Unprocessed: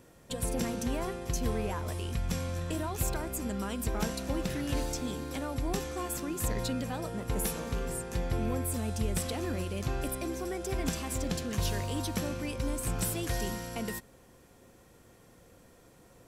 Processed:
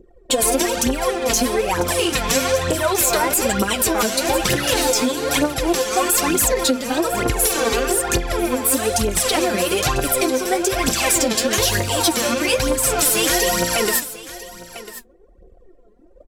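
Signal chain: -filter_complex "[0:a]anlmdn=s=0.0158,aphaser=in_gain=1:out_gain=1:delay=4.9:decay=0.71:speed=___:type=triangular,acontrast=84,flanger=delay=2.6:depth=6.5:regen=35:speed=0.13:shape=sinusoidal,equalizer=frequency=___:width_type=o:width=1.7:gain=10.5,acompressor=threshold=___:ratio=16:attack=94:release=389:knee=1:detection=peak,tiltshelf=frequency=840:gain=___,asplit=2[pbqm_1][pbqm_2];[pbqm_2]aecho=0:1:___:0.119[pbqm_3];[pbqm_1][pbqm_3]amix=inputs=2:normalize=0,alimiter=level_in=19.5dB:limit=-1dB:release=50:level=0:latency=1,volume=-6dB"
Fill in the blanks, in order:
1.1, 440, -28dB, -8.5, 996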